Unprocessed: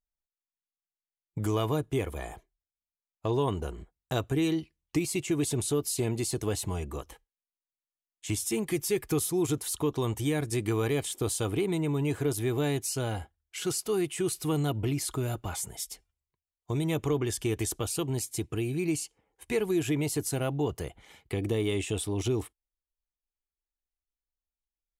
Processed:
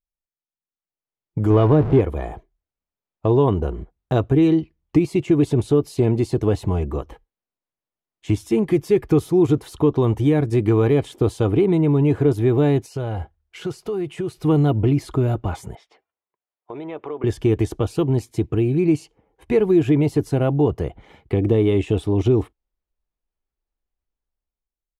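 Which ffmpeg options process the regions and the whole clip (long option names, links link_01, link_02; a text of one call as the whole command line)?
ffmpeg -i in.wav -filter_complex "[0:a]asettb=1/sr,asplit=3[link_01][link_02][link_03];[link_01]atrim=end=1.504[link_04];[link_02]atrim=start=1.5:end=2.01,asetpts=PTS-STARTPTS,afade=type=in:duration=0.004:curve=qsin,afade=type=out:start_time=0.506:duration=0.004:curve=qsin,aeval=exprs='val(0)+0.5*0.0316*sgn(val(0))':channel_layout=same,aemphasis=mode=reproduction:type=75fm[link_05];[link_03]atrim=start=2.006[link_06];[link_04][link_05]acrossfade=duration=0.004:curve1=hsin:curve2=qsin[link_07];[link_07][link_06]acrossfade=duration=0.004:curve1=qsin:curve2=hsin,asettb=1/sr,asplit=3[link_08][link_09][link_10];[link_08]atrim=end=12.864[link_11];[link_09]atrim=start=12.86:end=14.44,asetpts=PTS-STARTPTS,afade=type=in:duration=0.004:curve=qsin,afade=type=out:start_time=1.576:duration=0.004:curve=qsin,equalizer=frequency=260:width_type=o:width=0.49:gain=-7,acompressor=threshold=-33dB:ratio=5:attack=3.2:release=140:knee=1:detection=peak[link_12];[link_10]atrim=start=14.436[link_13];[link_11][link_12]acrossfade=duration=0.004:curve1=hsin:curve2=qsin[link_14];[link_14][link_13]acrossfade=duration=0.004:curve1=qsin:curve2=hsin,asettb=1/sr,asplit=3[link_15][link_16][link_17];[link_15]atrim=end=15.754[link_18];[link_16]atrim=start=15.75:end=17.24,asetpts=PTS-STARTPTS,afade=type=in:duration=0.004:curve=qsin,afade=type=out:start_time=1.486:duration=0.004:curve=qsin,highpass=560,lowpass=2500,acompressor=threshold=-41dB:ratio=2:attack=3.2:release=140:knee=1:detection=peak[link_19];[link_17]atrim=start=17.236[link_20];[link_18][link_19]acrossfade=duration=0.004:curve1=hsin:curve2=qsin[link_21];[link_21][link_20]acrossfade=duration=0.004:curve1=qsin:curve2=hsin,firequalizer=gain_entry='entry(350,0);entry(1600,-8);entry(8000,-24)':delay=0.05:min_phase=1,dynaudnorm=framelen=230:gausssize=9:maxgain=12dB" out.wav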